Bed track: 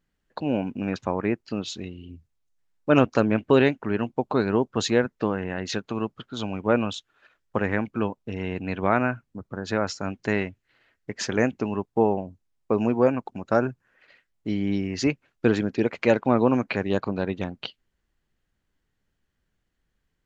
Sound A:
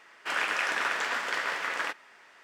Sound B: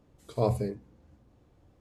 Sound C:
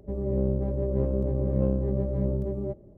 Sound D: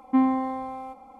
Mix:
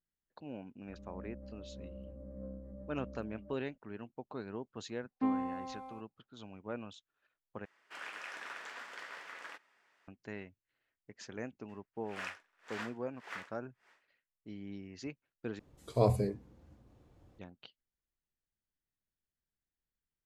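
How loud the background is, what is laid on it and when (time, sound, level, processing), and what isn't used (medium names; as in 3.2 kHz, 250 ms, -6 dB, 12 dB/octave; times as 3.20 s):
bed track -20 dB
0.81 s: add C -18 dB + static phaser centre 580 Hz, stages 8
5.08 s: add D -11.5 dB + gate -39 dBFS, range -40 dB
7.65 s: replace with A -16.5 dB
11.68 s: add A -10.5 dB, fades 0.02 s + logarithmic tremolo 1.8 Hz, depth 40 dB
15.59 s: replace with B -1 dB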